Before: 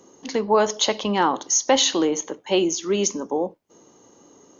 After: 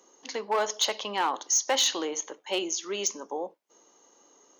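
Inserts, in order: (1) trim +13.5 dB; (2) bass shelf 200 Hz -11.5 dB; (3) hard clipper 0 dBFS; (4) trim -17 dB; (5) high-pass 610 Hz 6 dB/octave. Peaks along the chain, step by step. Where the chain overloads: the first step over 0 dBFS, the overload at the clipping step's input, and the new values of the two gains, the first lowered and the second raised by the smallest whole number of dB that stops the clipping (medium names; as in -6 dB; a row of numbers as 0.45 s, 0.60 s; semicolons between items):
+7.0 dBFS, +6.0 dBFS, 0.0 dBFS, -17.0 dBFS, -14.0 dBFS; step 1, 6.0 dB; step 1 +7.5 dB, step 4 -11 dB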